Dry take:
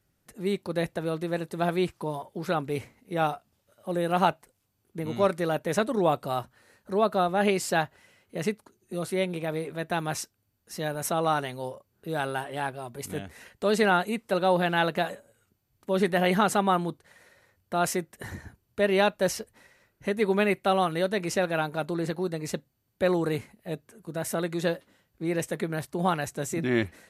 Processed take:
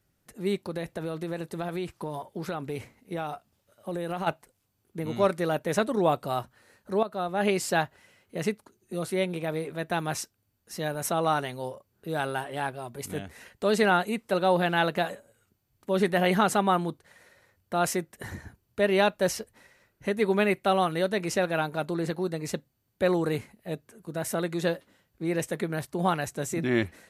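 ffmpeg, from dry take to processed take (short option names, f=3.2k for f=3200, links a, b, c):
-filter_complex "[0:a]asplit=3[a][b][c];[a]afade=t=out:st=0.66:d=0.02[d];[b]acompressor=threshold=-28dB:ratio=6:attack=3.2:release=140:knee=1:detection=peak,afade=t=in:st=0.66:d=0.02,afade=t=out:st=4.26:d=0.02[e];[c]afade=t=in:st=4.26:d=0.02[f];[d][e][f]amix=inputs=3:normalize=0,asplit=2[g][h];[g]atrim=end=7.03,asetpts=PTS-STARTPTS,afade=t=out:st=7.026:d=0.004:c=hsin:silence=0.211349[i];[h]atrim=start=7.03,asetpts=PTS-STARTPTS,afade=t=in:d=0.53:silence=0.211349[j];[i][j]concat=n=2:v=0:a=1"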